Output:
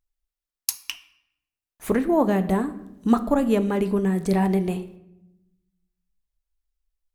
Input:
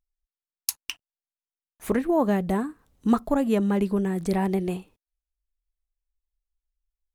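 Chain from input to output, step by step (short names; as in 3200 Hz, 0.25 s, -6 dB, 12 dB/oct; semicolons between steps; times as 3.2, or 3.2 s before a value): shoebox room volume 290 m³, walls mixed, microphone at 0.31 m; gain +2 dB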